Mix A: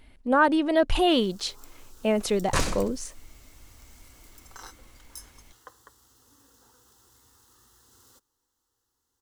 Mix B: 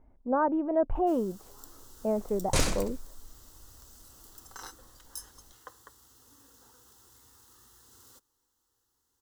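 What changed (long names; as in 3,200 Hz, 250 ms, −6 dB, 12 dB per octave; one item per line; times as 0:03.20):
speech: add transistor ladder low-pass 1,200 Hz, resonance 25%
master: add high-shelf EQ 10,000 Hz +4 dB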